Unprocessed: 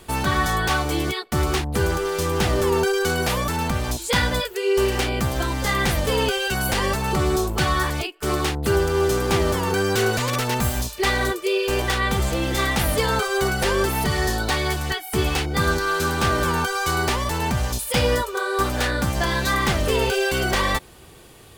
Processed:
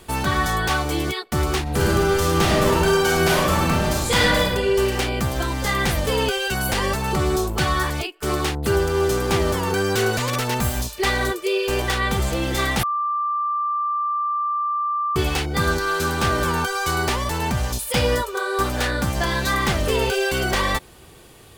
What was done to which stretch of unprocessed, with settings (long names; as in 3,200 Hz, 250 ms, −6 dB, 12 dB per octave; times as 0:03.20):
0:01.62–0:04.46: thrown reverb, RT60 1.3 s, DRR −3.5 dB
0:12.83–0:15.16: beep over 1,180 Hz −20 dBFS